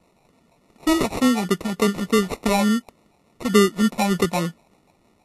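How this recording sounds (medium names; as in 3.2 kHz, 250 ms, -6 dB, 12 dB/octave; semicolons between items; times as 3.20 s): phasing stages 8, 3.4 Hz, lowest notch 400–1300 Hz; aliases and images of a low sample rate 1.6 kHz, jitter 0%; Vorbis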